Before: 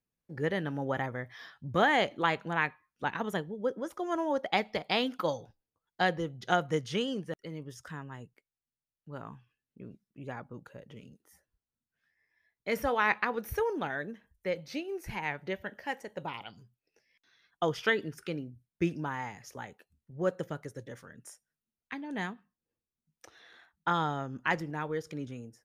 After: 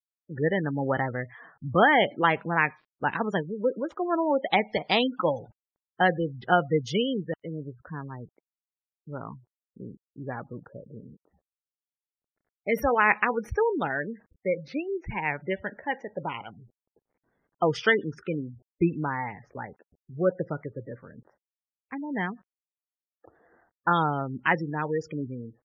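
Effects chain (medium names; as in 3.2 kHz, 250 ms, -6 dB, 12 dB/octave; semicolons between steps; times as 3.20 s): bit crusher 11-bit; level-controlled noise filter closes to 620 Hz, open at -28.5 dBFS; spectral gate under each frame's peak -20 dB strong; trim +6 dB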